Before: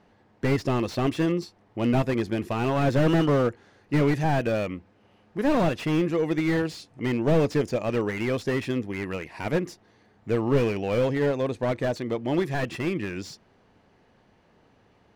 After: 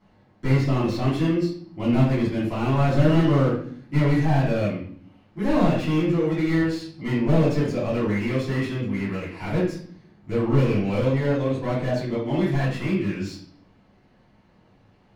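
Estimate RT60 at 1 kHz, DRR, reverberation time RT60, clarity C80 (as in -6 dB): 0.50 s, -9.5 dB, 0.55 s, 8.5 dB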